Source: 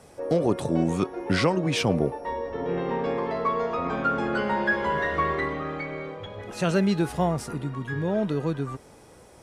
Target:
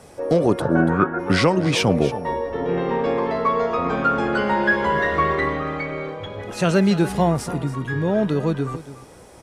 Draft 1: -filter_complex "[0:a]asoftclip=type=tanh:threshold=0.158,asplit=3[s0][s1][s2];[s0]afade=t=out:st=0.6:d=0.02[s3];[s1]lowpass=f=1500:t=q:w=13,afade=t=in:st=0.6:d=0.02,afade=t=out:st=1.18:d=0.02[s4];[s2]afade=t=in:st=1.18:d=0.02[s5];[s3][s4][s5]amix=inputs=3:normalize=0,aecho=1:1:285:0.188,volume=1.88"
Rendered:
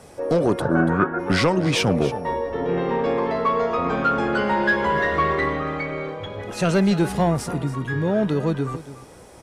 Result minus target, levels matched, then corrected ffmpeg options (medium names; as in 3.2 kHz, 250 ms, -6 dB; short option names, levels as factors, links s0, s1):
saturation: distortion +15 dB
-filter_complex "[0:a]asoftclip=type=tanh:threshold=0.473,asplit=3[s0][s1][s2];[s0]afade=t=out:st=0.6:d=0.02[s3];[s1]lowpass=f=1500:t=q:w=13,afade=t=in:st=0.6:d=0.02,afade=t=out:st=1.18:d=0.02[s4];[s2]afade=t=in:st=1.18:d=0.02[s5];[s3][s4][s5]amix=inputs=3:normalize=0,aecho=1:1:285:0.188,volume=1.88"